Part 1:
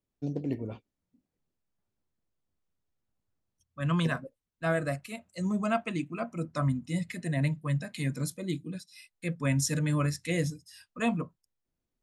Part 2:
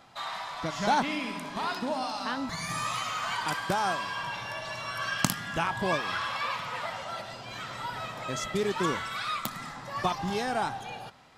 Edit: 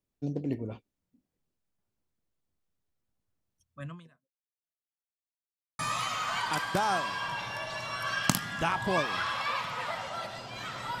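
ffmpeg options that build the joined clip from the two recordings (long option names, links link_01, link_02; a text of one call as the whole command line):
ffmpeg -i cue0.wav -i cue1.wav -filter_complex "[0:a]apad=whole_dur=11,atrim=end=11,asplit=2[link_01][link_02];[link_01]atrim=end=4.86,asetpts=PTS-STARTPTS,afade=type=out:start_time=3.74:duration=1.12:curve=exp[link_03];[link_02]atrim=start=4.86:end=5.79,asetpts=PTS-STARTPTS,volume=0[link_04];[1:a]atrim=start=2.74:end=7.95,asetpts=PTS-STARTPTS,afade=type=in:duration=0.004:curve=hsin[link_05];[link_03][link_04][link_05]concat=n=3:v=0:a=1" out.wav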